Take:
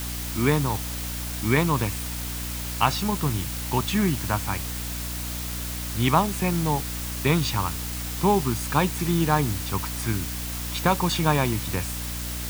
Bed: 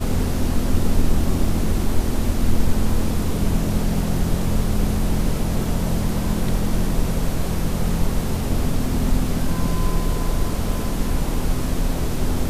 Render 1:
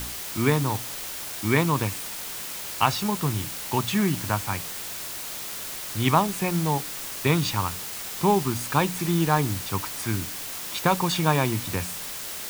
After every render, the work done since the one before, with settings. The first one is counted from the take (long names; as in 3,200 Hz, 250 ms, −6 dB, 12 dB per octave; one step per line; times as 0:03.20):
hum removal 60 Hz, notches 5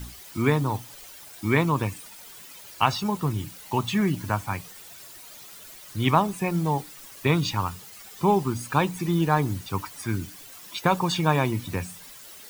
broadband denoise 13 dB, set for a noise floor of −35 dBFS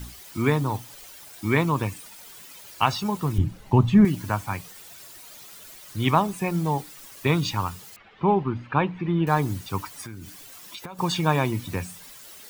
0:03.38–0:04.05: spectral tilt −4 dB per octave
0:07.96–0:09.27: low-pass filter 2,900 Hz 24 dB per octave
0:10.02–0:10.99: downward compressor 10 to 1, threshold −34 dBFS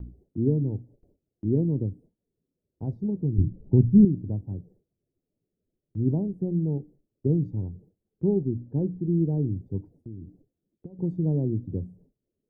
inverse Chebyshev low-pass filter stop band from 1,100 Hz, stop band 50 dB
noise gate with hold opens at −47 dBFS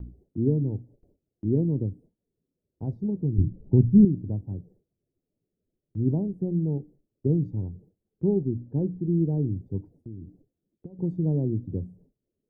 no processing that can be heard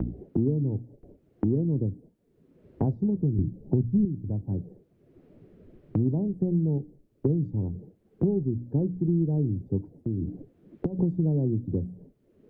multiband upward and downward compressor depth 100%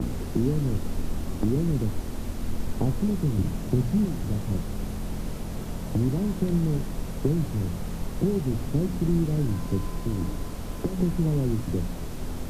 mix in bed −11.5 dB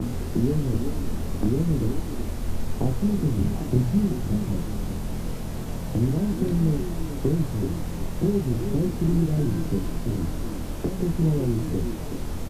double-tracking delay 25 ms −4 dB
on a send: echo through a band-pass that steps 374 ms, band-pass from 300 Hz, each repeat 1.4 octaves, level −5 dB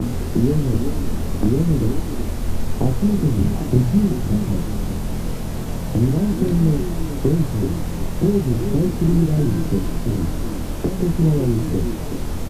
level +5.5 dB